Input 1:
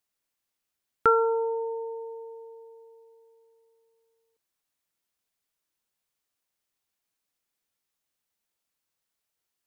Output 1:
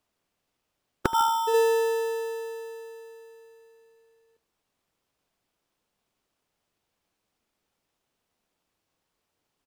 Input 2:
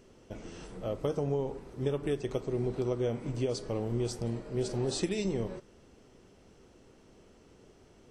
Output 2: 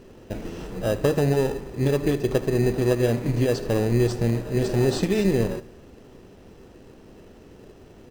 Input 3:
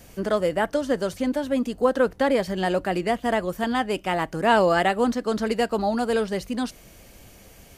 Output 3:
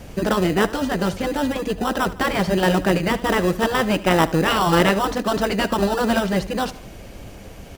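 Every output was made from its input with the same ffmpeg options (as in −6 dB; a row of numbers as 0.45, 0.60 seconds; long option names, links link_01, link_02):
-filter_complex "[0:a]afftfilt=real='re*lt(hypot(re,im),0.398)':imag='im*lt(hypot(re,im),0.398)':win_size=1024:overlap=0.75,highshelf=frequency=6800:gain=-11.5,asplit=2[link_01][link_02];[link_02]acrusher=samples=20:mix=1:aa=0.000001,volume=-3.5dB[link_03];[link_01][link_03]amix=inputs=2:normalize=0,aecho=1:1:76|152|228|304:0.126|0.0592|0.0278|0.0131,volume=7dB"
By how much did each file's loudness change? +1.0, +10.5, +3.5 LU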